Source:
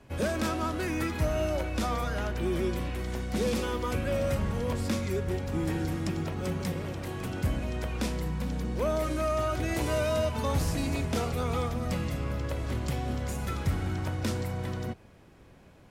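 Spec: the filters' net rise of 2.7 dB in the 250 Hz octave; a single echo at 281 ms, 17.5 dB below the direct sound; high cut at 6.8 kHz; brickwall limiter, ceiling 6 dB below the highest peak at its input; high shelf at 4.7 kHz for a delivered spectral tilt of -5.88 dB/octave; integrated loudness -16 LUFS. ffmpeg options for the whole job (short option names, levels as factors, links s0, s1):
-af "lowpass=6800,equalizer=f=250:t=o:g=3.5,highshelf=f=4700:g=7,alimiter=limit=0.075:level=0:latency=1,aecho=1:1:281:0.133,volume=6.31"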